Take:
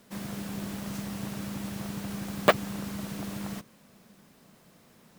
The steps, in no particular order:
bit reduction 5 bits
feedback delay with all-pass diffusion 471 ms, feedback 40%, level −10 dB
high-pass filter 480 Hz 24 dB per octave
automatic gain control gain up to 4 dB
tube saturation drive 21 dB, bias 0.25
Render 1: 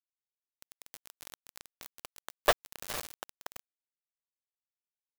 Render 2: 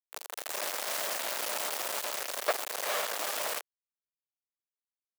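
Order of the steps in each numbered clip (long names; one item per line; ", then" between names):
high-pass filter, then tube saturation, then feedback delay with all-pass diffusion, then automatic gain control, then bit reduction
automatic gain control, then feedback delay with all-pass diffusion, then tube saturation, then bit reduction, then high-pass filter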